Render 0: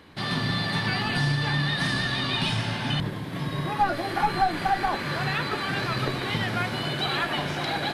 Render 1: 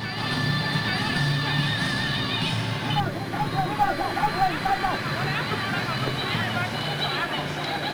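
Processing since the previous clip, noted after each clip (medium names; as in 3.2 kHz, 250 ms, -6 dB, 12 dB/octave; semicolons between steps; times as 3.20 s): short-mantissa float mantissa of 4-bit; reverse echo 833 ms -4.5 dB; mains buzz 400 Hz, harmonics 17, -55 dBFS -1 dB/octave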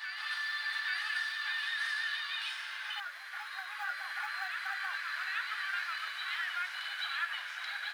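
ladder high-pass 1.3 kHz, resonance 50%; trim -2.5 dB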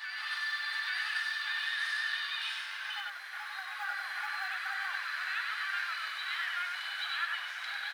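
delay 97 ms -5 dB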